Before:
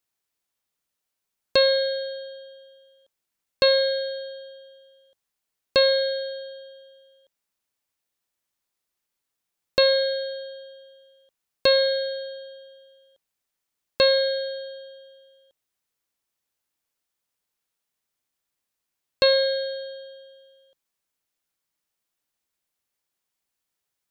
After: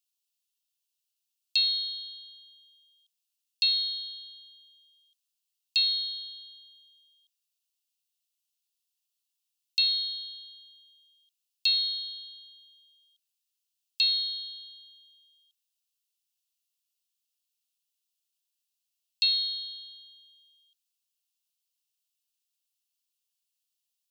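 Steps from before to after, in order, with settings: Chebyshev high-pass 2.7 kHz, order 5

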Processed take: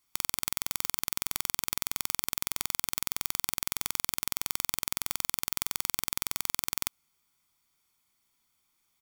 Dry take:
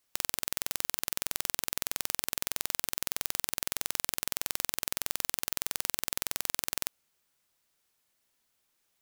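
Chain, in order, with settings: comb 0.9 ms, depth 57%

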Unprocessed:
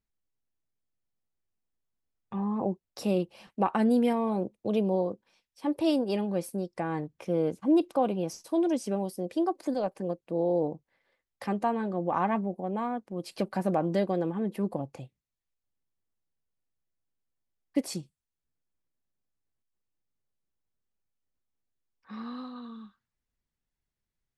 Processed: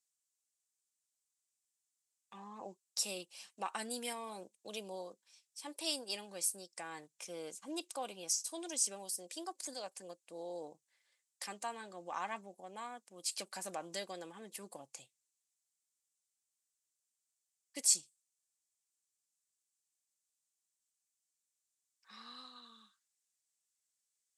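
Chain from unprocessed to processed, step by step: band-pass filter 7.7 kHz, Q 2.6; trim +15.5 dB

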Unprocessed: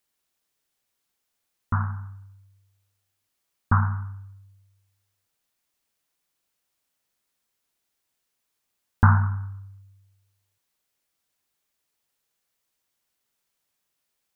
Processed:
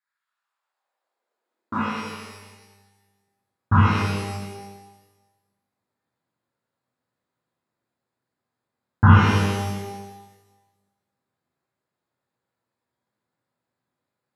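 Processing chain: local Wiener filter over 15 samples; high-pass sweep 1.5 kHz -> 120 Hz, 0.19–2.50 s; pitch-shifted reverb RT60 1.2 s, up +12 st, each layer -8 dB, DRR -9 dB; trim -4.5 dB

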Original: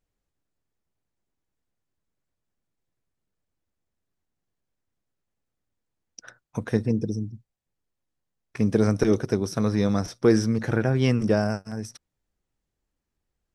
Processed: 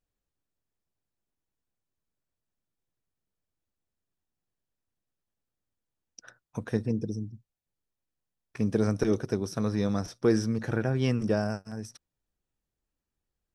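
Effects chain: band-stop 2.1 kHz, Q 17; trim -5 dB

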